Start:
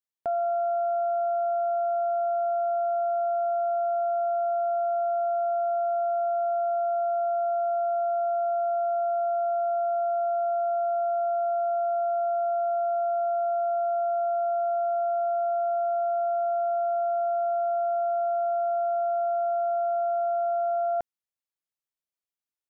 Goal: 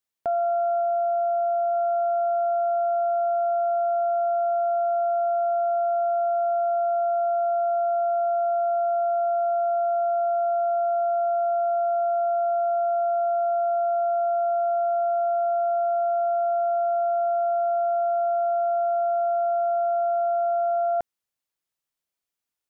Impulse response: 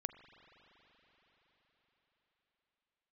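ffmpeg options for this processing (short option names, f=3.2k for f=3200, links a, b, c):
-filter_complex "[0:a]asplit=3[a][b][c];[a]afade=t=out:st=0.81:d=0.02[d];[b]equalizer=f=510:w=1.4:g=6,afade=t=in:st=0.81:d=0.02,afade=t=out:st=1.72:d=0.02[e];[c]afade=t=in:st=1.72:d=0.02[f];[d][e][f]amix=inputs=3:normalize=0,alimiter=level_in=2dB:limit=-24dB:level=0:latency=1,volume=-2dB,volume=6dB"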